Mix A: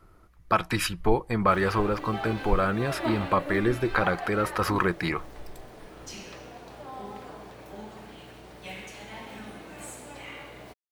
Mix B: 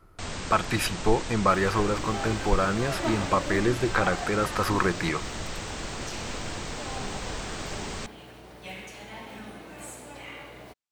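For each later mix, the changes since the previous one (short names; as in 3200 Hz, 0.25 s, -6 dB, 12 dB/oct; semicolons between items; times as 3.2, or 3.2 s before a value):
first sound: unmuted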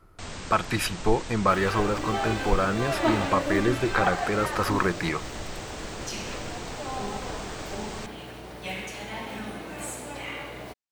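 first sound -3.0 dB; second sound +6.0 dB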